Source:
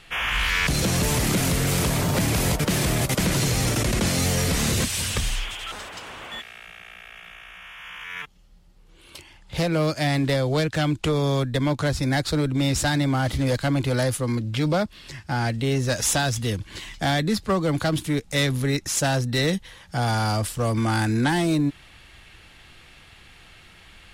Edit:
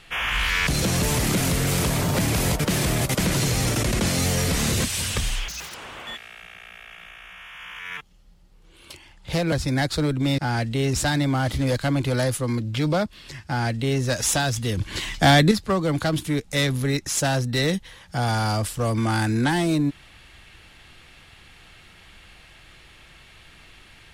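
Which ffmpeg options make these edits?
ffmpeg -i in.wav -filter_complex "[0:a]asplit=8[link_01][link_02][link_03][link_04][link_05][link_06][link_07][link_08];[link_01]atrim=end=5.484[link_09];[link_02]atrim=start=5.48:end=5.99,asetpts=PTS-STARTPTS,asetrate=85554,aresample=44100,atrim=end_sample=11593,asetpts=PTS-STARTPTS[link_10];[link_03]atrim=start=5.986:end=9.772[link_11];[link_04]atrim=start=11.868:end=12.732[link_12];[link_05]atrim=start=15.258:end=15.812[link_13];[link_06]atrim=start=12.728:end=16.572[link_14];[link_07]atrim=start=16.568:end=17.312,asetpts=PTS-STARTPTS,volume=7.5dB[link_15];[link_08]atrim=start=17.308[link_16];[link_09][link_10]acrossfade=duration=0.004:curve1=hsin:curve2=hsin[link_17];[link_17][link_11]acrossfade=duration=0.004:curve1=hsin:curve2=hsin[link_18];[link_18][link_12]acrossfade=duration=0.004:curve1=hsin:curve2=hsin[link_19];[link_19][link_13]acrossfade=duration=0.004:curve1=hsin:curve2=hsin[link_20];[link_20][link_14]acrossfade=duration=0.004:curve1=hsin:curve2=hsin[link_21];[link_21][link_15]acrossfade=duration=0.004:curve1=hsin:curve2=hsin[link_22];[link_22][link_16]acrossfade=duration=0.004:curve1=hsin:curve2=hsin" out.wav

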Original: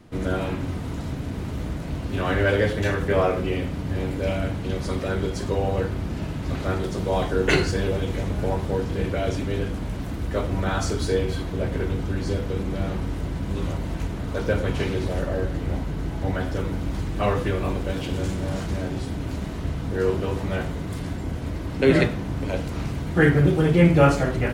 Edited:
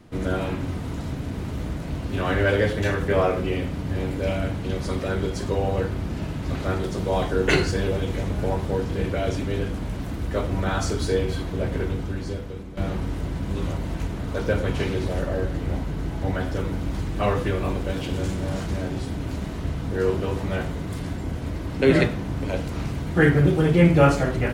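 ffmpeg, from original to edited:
ffmpeg -i in.wav -filter_complex "[0:a]asplit=2[link_01][link_02];[link_01]atrim=end=12.77,asetpts=PTS-STARTPTS,afade=type=out:start_time=11.79:duration=0.98:silence=0.211349[link_03];[link_02]atrim=start=12.77,asetpts=PTS-STARTPTS,afade=type=in:duration=0.004:curve=hsin:silence=0.211349[link_04];[link_03][link_04]concat=n=2:v=0:a=1" out.wav

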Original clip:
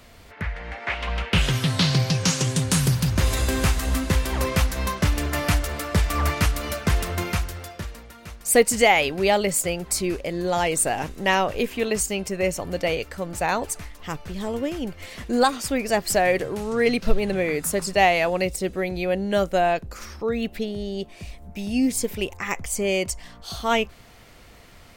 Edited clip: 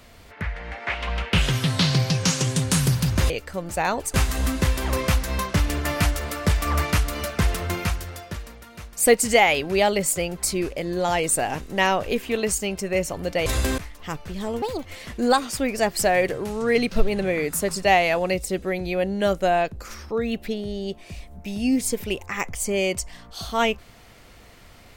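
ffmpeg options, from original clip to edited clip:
ffmpeg -i in.wav -filter_complex "[0:a]asplit=7[link_01][link_02][link_03][link_04][link_05][link_06][link_07];[link_01]atrim=end=3.302[link_08];[link_02]atrim=start=12.938:end=13.782[link_09];[link_03]atrim=start=3.618:end=12.942[link_10];[link_04]atrim=start=3.298:end=3.622[link_11];[link_05]atrim=start=13.778:end=14.624[link_12];[link_06]atrim=start=14.62:end=14.96,asetpts=PTS-STARTPTS,asetrate=64827,aresample=44100[link_13];[link_07]atrim=start=14.956[link_14];[link_08][link_09]acrossfade=duration=0.004:curve1=hsin:curve2=hsin[link_15];[link_15][link_10]acrossfade=duration=0.004:curve1=hsin:curve2=hsin[link_16];[link_16][link_11]acrossfade=duration=0.004:curve1=hsin:curve2=hsin[link_17];[link_17][link_12]acrossfade=duration=0.004:curve1=hsin:curve2=hsin[link_18];[link_18][link_13]acrossfade=duration=0.004:curve1=hsin:curve2=hsin[link_19];[link_19][link_14]acrossfade=duration=0.004:curve1=hsin:curve2=hsin" out.wav

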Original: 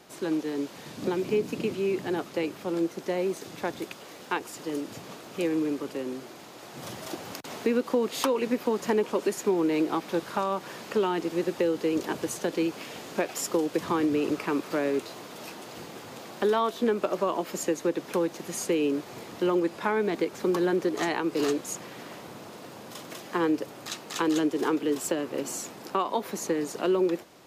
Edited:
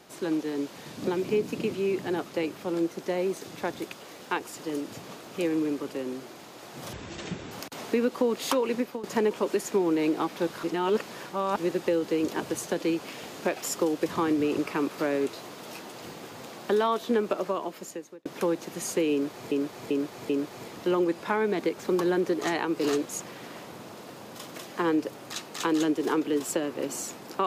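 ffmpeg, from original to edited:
ffmpeg -i in.wav -filter_complex "[0:a]asplit=10[link_01][link_02][link_03][link_04][link_05][link_06][link_07][link_08][link_09][link_10];[link_01]atrim=end=6.934[link_11];[link_02]atrim=start=6.93:end=7.24,asetpts=PTS-STARTPTS,asetrate=23373,aresample=44100,atrim=end_sample=25794,asetpts=PTS-STARTPTS[link_12];[link_03]atrim=start=7.236:end=8.76,asetpts=PTS-STARTPTS,afade=type=out:start_time=1.234:duration=0.29:silence=0.158489[link_13];[link_04]atrim=start=8.76:end=10.362,asetpts=PTS-STARTPTS,afade=type=in:duration=0.004:curve=hsin:silence=0.158489[link_14];[link_05]atrim=start=10.358:end=11.292,asetpts=PTS-STARTPTS,areverse[link_15];[link_06]atrim=start=11.288:end=17.98,asetpts=PTS-STARTPTS,afade=type=out:start_time=5.702:duration=0.99[link_16];[link_07]atrim=start=17.98:end=19.242,asetpts=PTS-STARTPTS,afade=type=in:duration=0.004:curve=hsin[link_17];[link_08]atrim=start=18.848:end=19.242[link_18];[link_09]atrim=start=18.848:end=19.242[link_19];[link_10]atrim=start=18.848[link_20];[link_11][link_12]acrossfade=duration=0.004:curve1=hsin:curve2=hsin[link_21];[link_13][link_14]concat=n=2:v=0:a=1[link_22];[link_21][link_22]acrossfade=duration=0.004:curve1=hsin:curve2=hsin[link_23];[link_23][link_15]acrossfade=duration=0.004:curve1=hsin:curve2=hsin[link_24];[link_16][link_17]concat=n=2:v=0:a=1[link_25];[link_24][link_25]acrossfade=duration=0.004:curve1=hsin:curve2=hsin[link_26];[link_26][link_18]acrossfade=duration=0.004:curve1=hsin:curve2=hsin[link_27];[link_27][link_19]acrossfade=duration=0.004:curve1=hsin:curve2=hsin[link_28];[link_28][link_20]acrossfade=duration=0.004:curve1=hsin:curve2=hsin" out.wav

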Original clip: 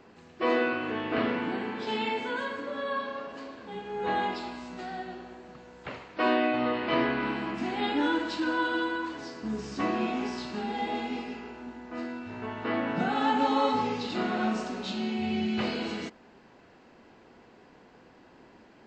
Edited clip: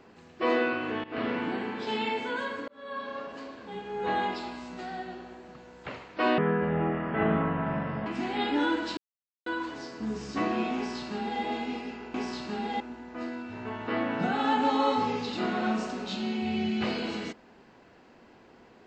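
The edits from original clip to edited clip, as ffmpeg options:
ffmpeg -i in.wav -filter_complex "[0:a]asplit=9[link_01][link_02][link_03][link_04][link_05][link_06][link_07][link_08][link_09];[link_01]atrim=end=1.04,asetpts=PTS-STARTPTS,afade=type=out:start_time=1.036:duration=0.004:curve=hsin:silence=0.11885[link_10];[link_02]atrim=start=1.04:end=2.68,asetpts=PTS-STARTPTS,afade=type=in:duration=0.42:curve=qsin:silence=0.11885,afade=type=out:start_time=1.636:duration=0.004:curve=hsin[link_11];[link_03]atrim=start=2.68:end=6.384,asetpts=PTS-STARTPTS,afade=type=in:duration=0.5[link_12];[link_04]atrim=start=6.38:end=7.49,asetpts=PTS-STARTPTS,asetrate=29106,aresample=44100,atrim=end_sample=74168,asetpts=PTS-STARTPTS[link_13];[link_05]atrim=start=7.486:end=8.4,asetpts=PTS-STARTPTS,afade=type=out:start_time=0.91:duration=0.004:curve=hsin[link_14];[link_06]atrim=start=8.4:end=8.89,asetpts=PTS-STARTPTS,volume=0[link_15];[link_07]atrim=start=8.89:end=11.572,asetpts=PTS-STARTPTS,afade=type=in:duration=0.004:curve=hsin[link_16];[link_08]atrim=start=10.188:end=10.852[link_17];[link_09]atrim=start=11.568[link_18];[link_10][link_11][link_12]concat=n=3:v=0:a=1[link_19];[link_19][link_13]acrossfade=duration=0.004:curve1=hsin:curve2=hsin[link_20];[link_14][link_15][link_16]concat=n=3:v=0:a=1[link_21];[link_20][link_21]acrossfade=duration=0.004:curve1=hsin:curve2=hsin[link_22];[link_22][link_17]acrossfade=duration=0.004:curve1=hsin:curve2=hsin[link_23];[link_23][link_18]acrossfade=duration=0.004:curve1=hsin:curve2=hsin" out.wav

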